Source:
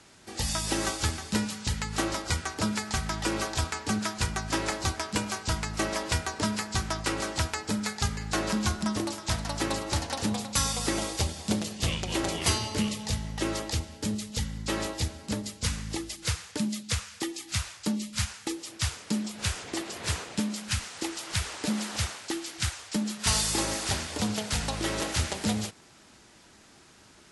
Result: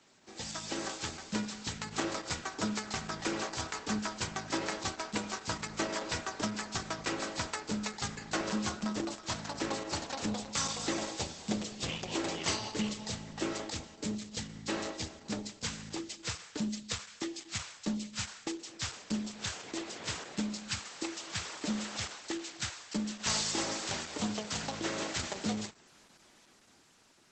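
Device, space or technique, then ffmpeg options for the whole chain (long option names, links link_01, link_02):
video call: -af "highpass=160,dynaudnorm=framelen=210:gausssize=11:maxgain=4dB,volume=-7.5dB" -ar 48000 -c:a libopus -b:a 12k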